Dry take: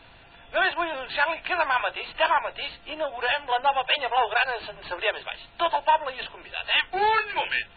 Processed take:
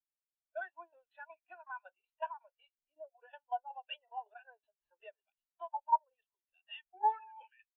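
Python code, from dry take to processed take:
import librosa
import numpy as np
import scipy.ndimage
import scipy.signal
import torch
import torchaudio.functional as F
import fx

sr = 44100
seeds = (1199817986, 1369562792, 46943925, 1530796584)

y = fx.tremolo_shape(x, sr, shape='saw_down', hz=5.4, depth_pct=80)
y = fx.dmg_tone(y, sr, hz=880.0, level_db=-31.0, at=(7.0, 7.46), fade=0.02)
y = fx.spectral_expand(y, sr, expansion=2.5)
y = y * librosa.db_to_amplitude(-8.5)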